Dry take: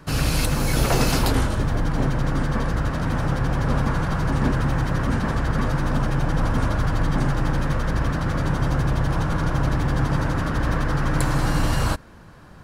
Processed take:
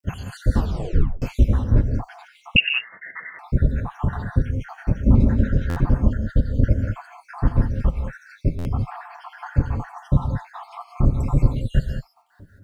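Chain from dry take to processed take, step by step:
time-frequency cells dropped at random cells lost 83%
high-pass filter 70 Hz 6 dB per octave
spectral tilt −3.5 dB per octave
bit reduction 12 bits
notch comb filter 160 Hz
reverb whose tail is shaped and stops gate 220 ms rising, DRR 4 dB
0:00.57: tape stop 0.65 s
0:02.56–0:03.39: voice inversion scrambler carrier 2,800 Hz
buffer that repeats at 0:05.69/0:08.58, samples 512, times 5

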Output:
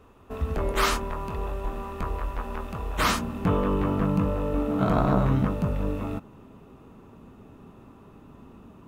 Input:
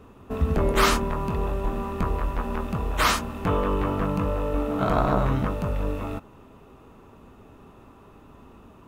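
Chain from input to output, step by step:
parametric band 180 Hz −6 dB 1.8 octaves, from 0:02.98 +7 dB
level −3 dB

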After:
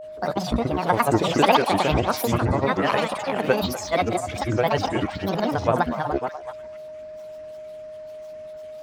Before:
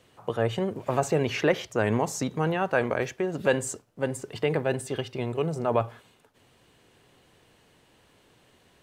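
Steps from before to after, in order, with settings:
delay that plays each chunk backwards 313 ms, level −5 dB
granular cloud, pitch spread up and down by 12 semitones
on a send: echo through a band-pass that steps 243 ms, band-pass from 930 Hz, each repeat 1.4 octaves, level −7 dB
on the sum: steady tone 620 Hz −40 dBFS
level +5 dB

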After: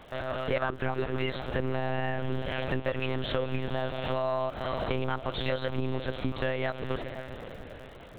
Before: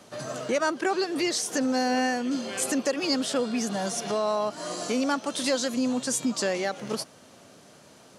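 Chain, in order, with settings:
low-shelf EQ 190 Hz −7 dB
feedback delay with all-pass diffusion 496 ms, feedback 47%, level −12.5 dB
one-pitch LPC vocoder at 8 kHz 130 Hz
surface crackle 97 per second −49 dBFS
downward compressor 4 to 1, threshold −28 dBFS, peak gain reduction 8 dB
level +3 dB

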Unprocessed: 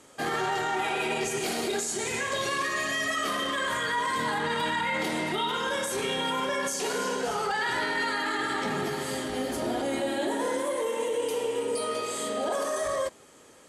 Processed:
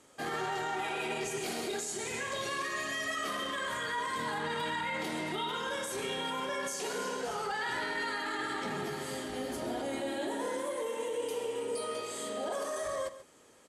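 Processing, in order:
single-tap delay 135 ms −14 dB
level −6.5 dB

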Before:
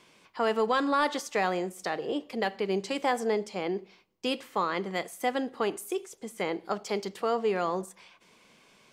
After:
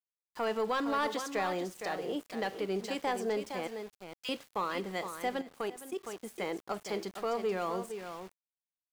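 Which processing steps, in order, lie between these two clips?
0:03.67–0:04.29: high-pass filter 1,200 Hz 24 dB per octave
single-tap delay 462 ms −9.5 dB
leveller curve on the samples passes 1
centre clipping without the shift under −40.5 dBFS
0:05.37–0:06.04: output level in coarse steps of 13 dB
level −8 dB

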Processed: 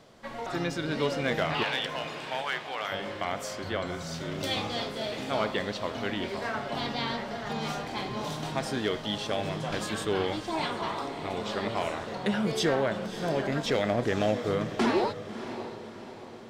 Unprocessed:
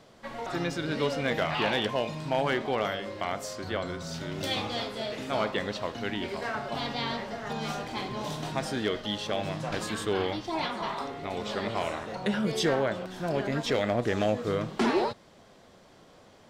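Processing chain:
0:01.63–0:02.92: high-pass filter 950 Hz 12 dB per octave
on a send: feedback delay with all-pass diffusion 610 ms, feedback 49%, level −11.5 dB

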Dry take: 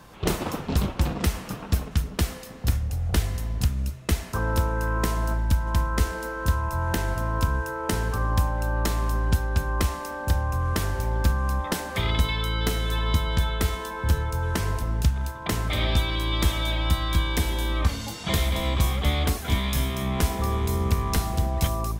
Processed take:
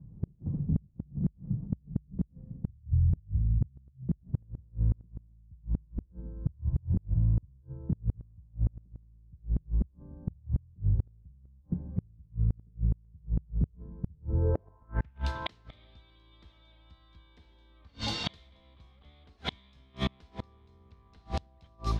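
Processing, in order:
low-pass filter sweep 140 Hz → 4,100 Hz, 0:14.07–0:15.31
gate with flip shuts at −17 dBFS, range −34 dB
one half of a high-frequency compander decoder only

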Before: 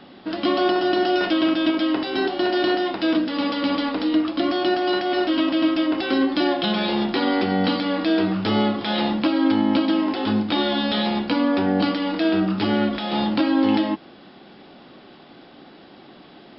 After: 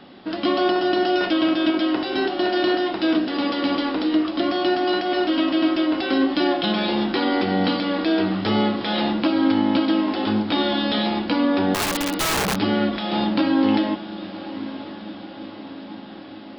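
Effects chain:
feedback delay with all-pass diffusion 985 ms, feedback 63%, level −14 dB
0:11.74–0:12.56: wrap-around overflow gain 17 dB

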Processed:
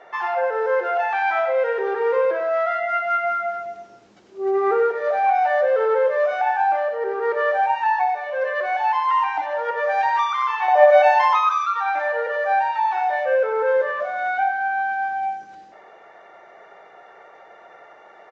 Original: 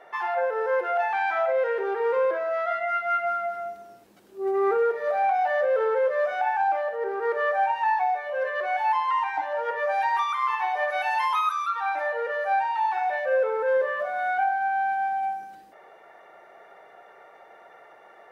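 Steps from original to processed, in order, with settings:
0:10.68–0:11.38: high-pass with resonance 580 Hz, resonance Q 4.8
repeating echo 93 ms, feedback 38%, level −9.5 dB
level +3.5 dB
Ogg Vorbis 64 kbit/s 16,000 Hz

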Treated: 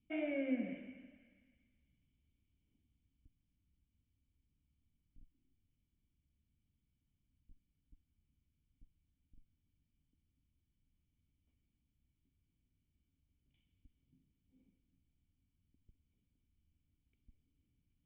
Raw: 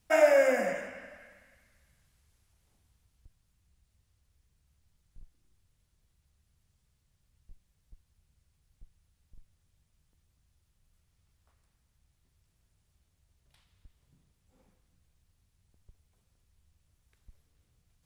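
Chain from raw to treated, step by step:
formant resonators in series i
level +3 dB

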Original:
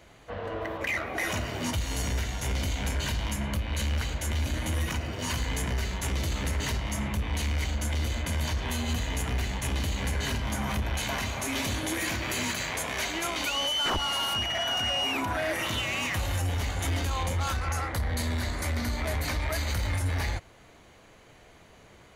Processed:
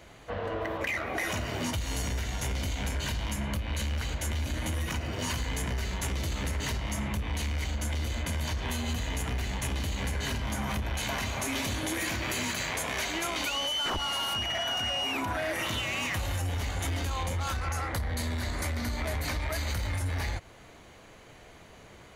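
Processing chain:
downward compressor, threshold −31 dBFS, peak gain reduction 6 dB
level +2.5 dB

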